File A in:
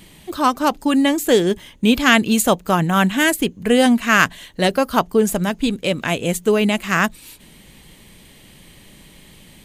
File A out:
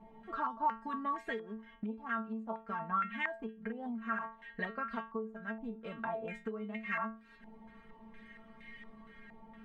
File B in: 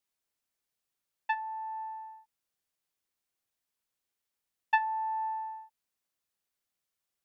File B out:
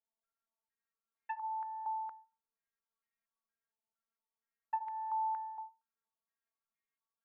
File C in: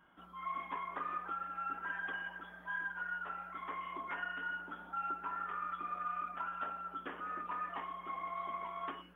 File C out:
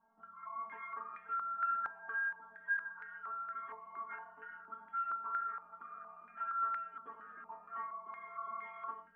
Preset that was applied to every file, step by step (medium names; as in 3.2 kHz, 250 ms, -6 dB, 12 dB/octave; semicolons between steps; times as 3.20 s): inharmonic resonator 220 Hz, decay 0.27 s, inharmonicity 0.002; compression 16:1, threshold -41 dBFS; step-sequenced low-pass 4.3 Hz 860–2000 Hz; trim +3 dB